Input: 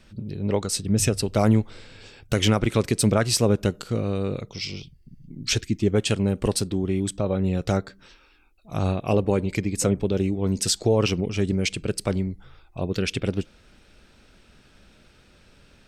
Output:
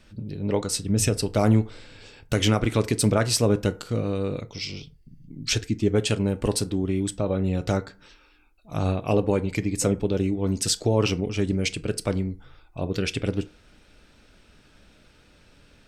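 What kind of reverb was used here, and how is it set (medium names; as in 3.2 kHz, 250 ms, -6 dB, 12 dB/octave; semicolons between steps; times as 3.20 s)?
FDN reverb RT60 0.37 s, low-frequency decay 0.7×, high-frequency decay 0.55×, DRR 10.5 dB; trim -1 dB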